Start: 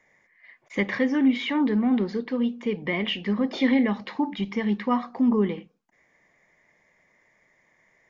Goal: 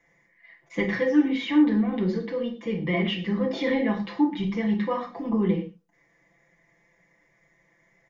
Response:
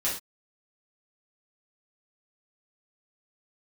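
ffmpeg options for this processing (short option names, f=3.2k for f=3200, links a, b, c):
-filter_complex "[0:a]aecho=1:1:5.9:0.95,asplit=2[a][b];[1:a]atrim=start_sample=2205,lowshelf=f=500:g=10.5[c];[b][c]afir=irnorm=-1:irlink=0,volume=-9dB[d];[a][d]amix=inputs=2:normalize=0,volume=-8dB"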